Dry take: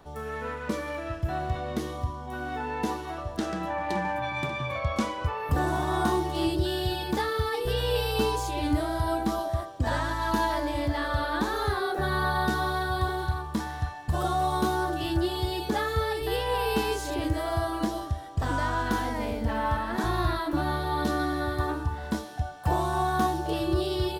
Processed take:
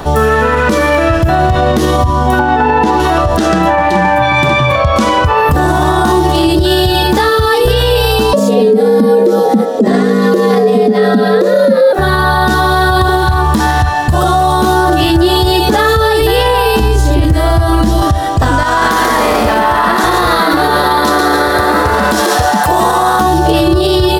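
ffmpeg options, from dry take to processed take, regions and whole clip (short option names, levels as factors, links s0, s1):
-filter_complex "[0:a]asettb=1/sr,asplit=3[s0][s1][s2];[s0]atrim=end=2.394[s3];[s1]atrim=start=2.39:end=3,asetpts=PTS-STARTPTS,afade=t=in:d=0.004:c=qsin,afade=t=out:st=0.606:d=0.004:c=qsin,highpass=68,aemphasis=mode=reproduction:type=50fm,aeval=exprs='val(0)+0.0178*sin(2*PI*860*n/s)':c=same[s4];[s2]atrim=start=2.996[s5];[s3][s4]acrossfade=d=0.004:c1=hsin:c2=qsin[s6];[s6][s5]acrossfade=d=0.004:c1=qsin:c2=hsin,asettb=1/sr,asplit=3[s7][s8][s9];[s7]atrim=end=8.334[s10];[s8]atrim=start=8.33:end=11.93,asetpts=PTS-STARTPTS,afade=t=in:d=0.004:c=qsin,afade=t=out:st=3.596:d=0.004:c=qsin,lowshelf=f=570:t=q:w=3:g=10,afreqshift=140[s11];[s9]atrim=start=11.926[s12];[s10][s11]acrossfade=d=0.004:c1=hsin:c2=qsin[s13];[s13][s12]acrossfade=d=0.004:c1=qsin:c2=hsin,asettb=1/sr,asplit=3[s14][s15][s16];[s14]atrim=end=16.794[s17];[s15]atrim=start=16.79:end=18.02,asetpts=PTS-STARTPTS,afade=t=in:d=0.004:c=qsin,afade=t=out:st=1.226:d=0.004:c=qsin,equalizer=f=95:t=o:w=2.6:g=11.5,acrossover=split=83|210|1500[s18][s19][s20][s21];[s18]acompressor=threshold=0.0398:ratio=3[s22];[s19]acompressor=threshold=0.0158:ratio=3[s23];[s20]acompressor=threshold=0.0141:ratio=3[s24];[s21]acompressor=threshold=0.00447:ratio=3[s25];[s22][s23][s24][s25]amix=inputs=4:normalize=0,asoftclip=type=hard:threshold=0.112[s26];[s16]atrim=start=18.016[s27];[s17][s26]acrossfade=d=0.004:c1=hsin:c2=qsin[s28];[s28][s27]acrossfade=d=0.004:c1=qsin:c2=hsin,asettb=1/sr,asplit=3[s29][s30][s31];[s29]atrim=end=18.634[s32];[s30]atrim=start=18.63:end=23.21,asetpts=PTS-STARTPTS,afade=t=in:d=0.004:c=qsin,afade=t=out:st=4.576:d=0.004:c=qsin,bass=f=250:g=-11,treble=f=4000:g=3,asplit=7[s33][s34][s35][s36][s37][s38][s39];[s34]adelay=139,afreqshift=130,volume=0.631[s40];[s35]adelay=278,afreqshift=260,volume=0.292[s41];[s36]adelay=417,afreqshift=390,volume=0.133[s42];[s37]adelay=556,afreqshift=520,volume=0.0617[s43];[s38]adelay=695,afreqshift=650,volume=0.0282[s44];[s39]adelay=834,afreqshift=780,volume=0.013[s45];[s33][s40][s41][s42][s43][s44][s45]amix=inputs=7:normalize=0,atrim=end_sample=201978,acompressor=threshold=0.0251:ratio=6:attack=3.2:release=140:knee=1:detection=peak[s46];[s31]atrim=start=23.206[s47];[s32][s46]acrossfade=d=0.004:c1=hsin:c2=qsin[s48];[s48][s47]acrossfade=d=0.004:c1=qsin:c2=hsin,bandreject=f=2200:w=21,acompressor=threshold=0.0282:ratio=6,alimiter=level_in=33.5:limit=0.891:release=50:level=0:latency=1,volume=0.891"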